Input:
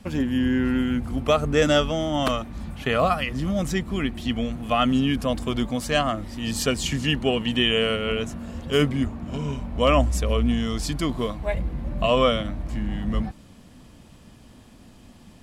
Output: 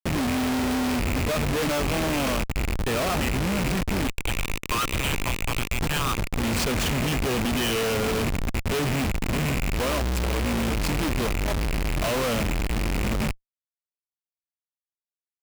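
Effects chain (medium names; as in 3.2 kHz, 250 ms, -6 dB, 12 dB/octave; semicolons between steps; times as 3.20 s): rattle on loud lows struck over -31 dBFS, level -16 dBFS; 4.07–6.18 s: rippled Chebyshev high-pass 930 Hz, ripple 3 dB; Schmitt trigger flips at -29 dBFS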